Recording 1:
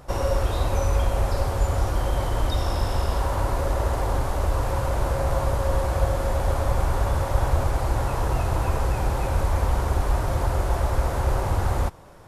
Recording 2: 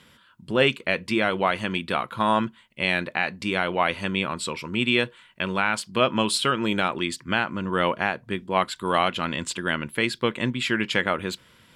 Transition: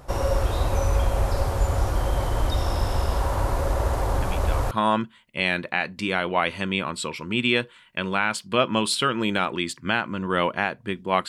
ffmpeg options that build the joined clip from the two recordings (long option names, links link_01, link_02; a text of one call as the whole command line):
ffmpeg -i cue0.wav -i cue1.wav -filter_complex "[1:a]asplit=2[link_01][link_02];[0:a]apad=whole_dur=11.28,atrim=end=11.28,atrim=end=4.712[link_03];[link_02]atrim=start=2.138:end=8.71[link_04];[link_01]atrim=start=1.65:end=2.14,asetpts=PTS-STARTPTS,volume=-10dB,afade=type=in:duration=0.004:curve=hsin,afade=type=out:start_time=0.486:duration=0.004:curve=hsin,adelay=4220[link_05];[link_03][link_04]acrossfade=duration=0.004:curve1=hsin:curve2=hsin[link_06];[link_06][link_05]amix=inputs=2:normalize=0" out.wav